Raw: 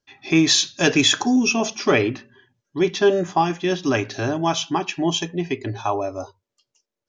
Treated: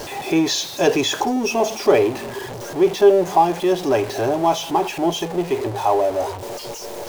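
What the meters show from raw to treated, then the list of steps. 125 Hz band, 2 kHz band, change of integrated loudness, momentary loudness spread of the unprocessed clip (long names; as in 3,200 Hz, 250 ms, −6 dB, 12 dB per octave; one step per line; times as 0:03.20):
−3.5 dB, −4.0 dB, +1.0 dB, 10 LU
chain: converter with a step at zero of −21.5 dBFS
flat-topped bell 590 Hz +10.5 dB
level −7 dB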